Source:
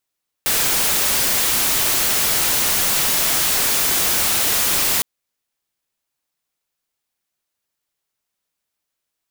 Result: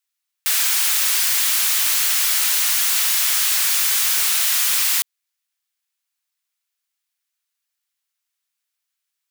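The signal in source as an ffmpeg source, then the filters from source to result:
-f lavfi -i "anoisesrc=c=white:a=0.218:d=4.56:r=44100:seed=1"
-af "highpass=1.4k"

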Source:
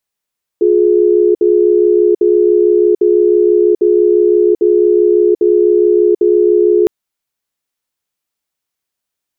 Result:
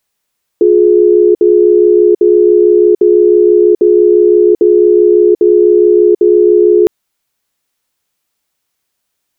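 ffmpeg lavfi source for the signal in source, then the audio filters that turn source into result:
-f lavfi -i "aevalsrc='0.335*(sin(2*PI*355*t)+sin(2*PI*421*t))*clip(min(mod(t,0.8),0.74-mod(t,0.8))/0.005,0,1)':d=6.26:s=44100"
-af "alimiter=level_in=9.5dB:limit=-1dB:release=50:level=0:latency=1"

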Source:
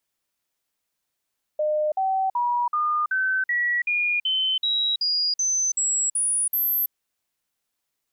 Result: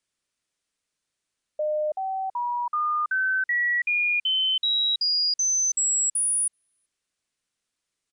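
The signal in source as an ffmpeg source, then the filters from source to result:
-f lavfi -i "aevalsrc='0.1*clip(min(mod(t,0.38),0.33-mod(t,0.38))/0.005,0,1)*sin(2*PI*608*pow(2,floor(t/0.38)/3)*mod(t,0.38))':d=5.32:s=44100"
-af "equalizer=f=820:t=o:w=0.7:g=-6,aresample=22050,aresample=44100"

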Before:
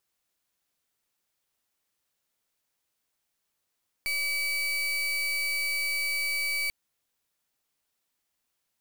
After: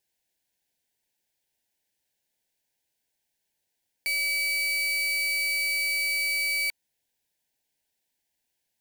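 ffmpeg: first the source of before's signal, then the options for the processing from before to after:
-f lavfi -i "aevalsrc='0.0355*(2*lt(mod(2290*t,1),0.35)-1)':d=2.64:s=44100"
-filter_complex "[0:a]asplit=2[a][b];[b]acrusher=bits=3:dc=4:mix=0:aa=0.000001,volume=-3.5dB[c];[a][c]amix=inputs=2:normalize=0,asuperstop=centerf=1200:order=8:qfactor=2.3"

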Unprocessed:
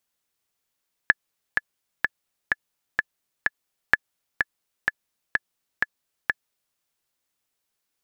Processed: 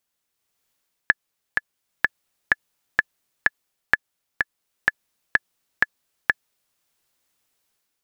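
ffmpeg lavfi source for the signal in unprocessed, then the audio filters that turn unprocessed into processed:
-f lavfi -i "aevalsrc='pow(10,(-1.5-5.5*gte(mod(t,6*60/127),60/127))/20)*sin(2*PI*1720*mod(t,60/127))*exp(-6.91*mod(t,60/127)/0.03)':d=5.66:s=44100"
-af "dynaudnorm=f=350:g=3:m=7dB"

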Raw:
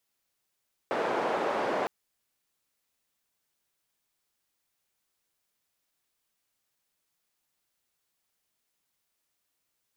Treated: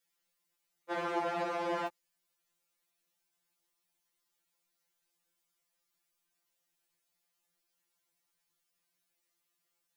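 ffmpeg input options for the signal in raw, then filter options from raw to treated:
-f lavfi -i "anoisesrc=c=white:d=0.96:r=44100:seed=1,highpass=f=410,lowpass=f=730,volume=-7.2dB"
-af "alimiter=limit=-22dB:level=0:latency=1:release=98,afftfilt=real='re*2.83*eq(mod(b,8),0)':imag='im*2.83*eq(mod(b,8),0)':win_size=2048:overlap=0.75"

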